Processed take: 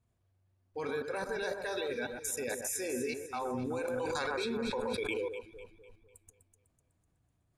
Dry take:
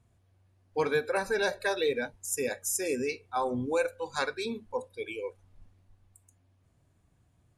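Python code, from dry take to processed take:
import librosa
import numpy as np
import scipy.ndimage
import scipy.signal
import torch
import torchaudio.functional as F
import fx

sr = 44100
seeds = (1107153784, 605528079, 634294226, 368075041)

y = fx.level_steps(x, sr, step_db=20)
y = fx.echo_alternate(y, sr, ms=125, hz=1600.0, feedback_pct=64, wet_db=-5.5)
y = fx.env_flatten(y, sr, amount_pct=100, at=(3.88, 5.28))
y = y * 10.0 ** (4.0 / 20.0)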